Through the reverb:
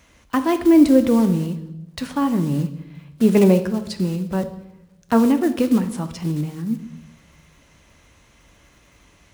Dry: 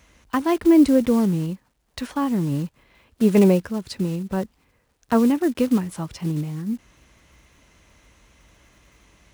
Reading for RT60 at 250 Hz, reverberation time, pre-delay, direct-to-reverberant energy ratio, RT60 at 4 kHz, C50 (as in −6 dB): 1.3 s, 0.90 s, 3 ms, 9.0 dB, 0.75 s, 12.0 dB